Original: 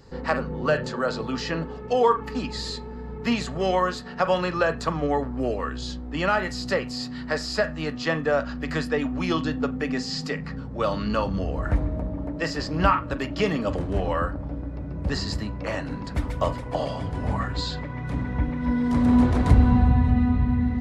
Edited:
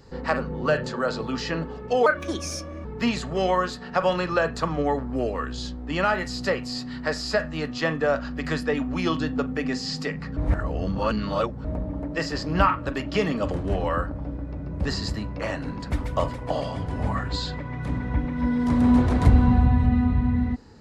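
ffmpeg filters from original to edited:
ffmpeg -i in.wav -filter_complex "[0:a]asplit=5[link_01][link_02][link_03][link_04][link_05];[link_01]atrim=end=2.064[link_06];[link_02]atrim=start=2.06:end=3.09,asetpts=PTS-STARTPTS,asetrate=57771,aresample=44100,atrim=end_sample=34674,asetpts=PTS-STARTPTS[link_07];[link_03]atrim=start=3.086:end=10.612[link_08];[link_04]atrim=start=10.608:end=11.892,asetpts=PTS-STARTPTS,areverse[link_09];[link_05]atrim=start=11.888[link_10];[link_06][link_07]acrossfade=duration=0.004:curve1=hsin:curve2=hsin[link_11];[link_11][link_08]acrossfade=duration=0.004:curve1=hsin:curve2=hsin[link_12];[link_12][link_09]acrossfade=duration=0.004:curve1=hsin:curve2=hsin[link_13];[link_13][link_10]acrossfade=duration=0.004:curve1=hsin:curve2=hsin" out.wav

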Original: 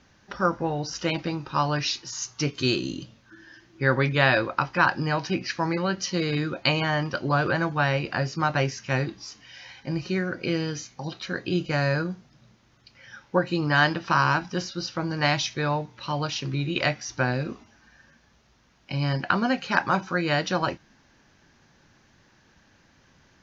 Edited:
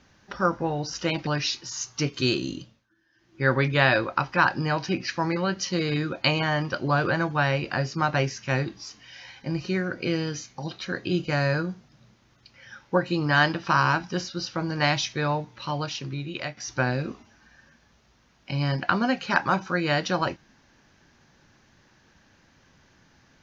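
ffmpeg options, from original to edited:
ffmpeg -i in.wav -filter_complex "[0:a]asplit=5[link_01][link_02][link_03][link_04][link_05];[link_01]atrim=end=1.272[link_06];[link_02]atrim=start=1.678:end=3.28,asetpts=PTS-STARTPTS,afade=type=out:start_time=1.252:duration=0.35:silence=0.105925[link_07];[link_03]atrim=start=3.28:end=3.54,asetpts=PTS-STARTPTS,volume=-19.5dB[link_08];[link_04]atrim=start=3.54:end=16.98,asetpts=PTS-STARTPTS,afade=type=in:duration=0.35:silence=0.105925,afade=type=out:start_time=12.45:duration=0.99:silence=0.281838[link_09];[link_05]atrim=start=16.98,asetpts=PTS-STARTPTS,afade=type=in:duration=0.004:curve=hsin:silence=0.281838[link_10];[link_07][link_08][link_09][link_10]concat=n=4:v=0:a=1[link_11];[link_06][link_11]acrossfade=duration=0.004:curve1=hsin:curve2=hsin" out.wav

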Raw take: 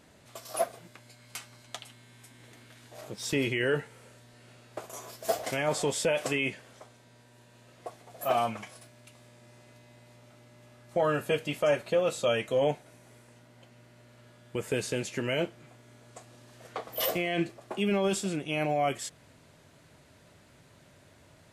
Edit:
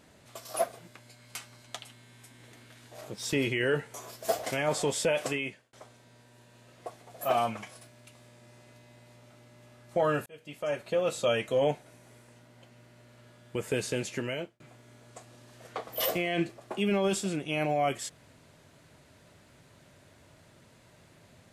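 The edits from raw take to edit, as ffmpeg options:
ffmpeg -i in.wav -filter_complex "[0:a]asplit=5[link_01][link_02][link_03][link_04][link_05];[link_01]atrim=end=3.942[link_06];[link_02]atrim=start=4.938:end=6.73,asetpts=PTS-STARTPTS,afade=type=out:start_time=1.282:duration=0.51[link_07];[link_03]atrim=start=6.73:end=11.26,asetpts=PTS-STARTPTS,afade=type=in:duration=0.004:curve=hsin,afade=type=out:start_time=4.526:duration=0.004:curve=hsin[link_08];[link_04]atrim=start=11.26:end=15.6,asetpts=PTS-STARTPTS,afade=type=in:duration=0.9,afade=type=out:start_time=3.88:duration=0.46[link_09];[link_05]atrim=start=15.6,asetpts=PTS-STARTPTS,afade=type=in:duration=0.004:curve=hsin[link_10];[link_07][link_08][link_09][link_10]concat=n=4:v=0:a=1[link_11];[link_06][link_11]acrossfade=duration=0.004:curve1=hsin:curve2=hsin" out.wav

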